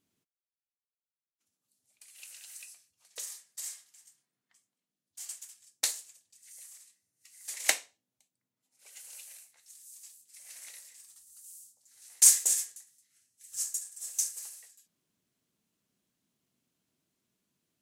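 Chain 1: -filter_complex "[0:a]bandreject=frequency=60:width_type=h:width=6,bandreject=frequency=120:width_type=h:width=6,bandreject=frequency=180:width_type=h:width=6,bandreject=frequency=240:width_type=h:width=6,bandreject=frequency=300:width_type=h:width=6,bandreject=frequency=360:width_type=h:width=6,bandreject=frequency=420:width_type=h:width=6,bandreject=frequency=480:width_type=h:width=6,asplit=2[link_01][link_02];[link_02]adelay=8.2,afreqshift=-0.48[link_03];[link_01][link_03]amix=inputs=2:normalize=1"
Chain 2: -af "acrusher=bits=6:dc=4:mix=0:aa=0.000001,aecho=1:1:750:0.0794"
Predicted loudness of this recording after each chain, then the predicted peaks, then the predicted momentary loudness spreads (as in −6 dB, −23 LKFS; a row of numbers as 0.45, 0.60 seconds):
−31.5, −27.5 LKFS; −8.0, −6.0 dBFS; 26, 25 LU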